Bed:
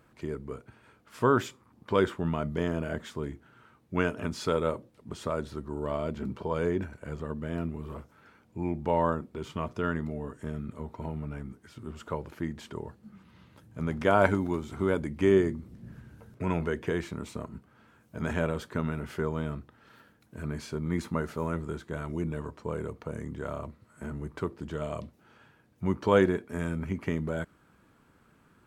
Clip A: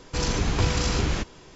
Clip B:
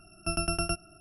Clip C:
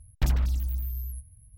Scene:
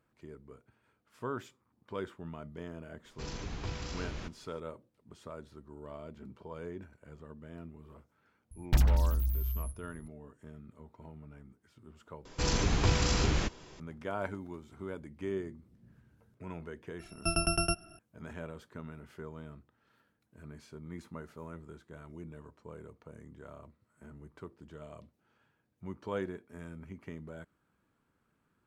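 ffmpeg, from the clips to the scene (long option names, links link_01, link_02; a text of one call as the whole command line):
ffmpeg -i bed.wav -i cue0.wav -i cue1.wav -i cue2.wav -filter_complex "[1:a]asplit=2[link_01][link_02];[0:a]volume=-14dB[link_03];[link_01]lowpass=6500[link_04];[link_03]asplit=2[link_05][link_06];[link_05]atrim=end=12.254[link_07];[link_02]atrim=end=1.55,asetpts=PTS-STARTPTS,volume=-4dB[link_08];[link_06]atrim=start=13.796[link_09];[link_04]atrim=end=1.55,asetpts=PTS-STARTPTS,volume=-15.5dB,afade=type=in:duration=0.004:curve=hsin,afade=type=out:start_time=1.546:duration=0.004:curve=hsin,adelay=134505S[link_10];[3:a]atrim=end=1.57,asetpts=PTS-STARTPTS,volume=-0.5dB,afade=type=in:duration=0.004:curve=hsin,afade=type=out:start_time=1.566:duration=0.004:curve=hsin,adelay=8510[link_11];[2:a]atrim=end=1,asetpts=PTS-STARTPTS,afade=type=in:duration=0.004:curve=hsin,afade=type=out:start_time=0.996:duration=0.004:curve=hsin,adelay=16990[link_12];[link_07][link_08]acrossfade=duration=0.004:curve1=hsin:curve2=hsin[link_13];[link_13][link_09]acrossfade=duration=0.004:curve1=hsin:curve2=hsin[link_14];[link_14][link_10][link_11][link_12]amix=inputs=4:normalize=0" out.wav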